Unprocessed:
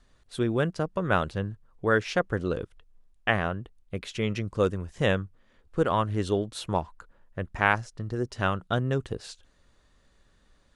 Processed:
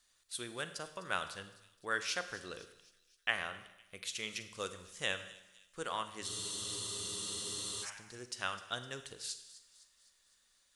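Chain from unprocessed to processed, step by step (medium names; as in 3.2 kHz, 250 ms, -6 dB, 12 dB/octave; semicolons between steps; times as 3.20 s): pre-emphasis filter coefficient 0.97; de-hum 53.07 Hz, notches 2; on a send: feedback echo behind a high-pass 255 ms, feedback 55%, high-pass 4 kHz, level -15 dB; on the sum: Schroeder reverb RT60 0.93 s, combs from 33 ms, DRR 10 dB; spectral freeze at 6.30 s, 1.54 s; trim +4.5 dB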